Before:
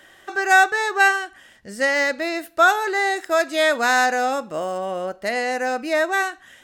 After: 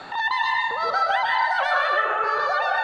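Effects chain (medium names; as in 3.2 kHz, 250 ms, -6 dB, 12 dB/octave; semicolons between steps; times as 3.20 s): speed mistake 33 rpm record played at 78 rpm; transient shaper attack -11 dB, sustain +5 dB; Bessel low-pass 1.2 kHz, order 2; plate-style reverb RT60 1.2 s, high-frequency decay 0.55×, pre-delay 115 ms, DRR -4 dB; three bands compressed up and down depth 70%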